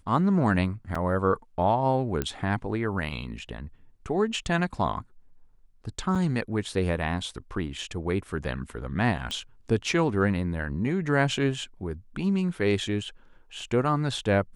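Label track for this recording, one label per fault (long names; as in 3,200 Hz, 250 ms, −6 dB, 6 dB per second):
0.950000	0.950000	drop-out 4.1 ms
2.220000	2.220000	click −13 dBFS
6.150000	6.160000	drop-out 5.4 ms
9.310000	9.310000	click −19 dBFS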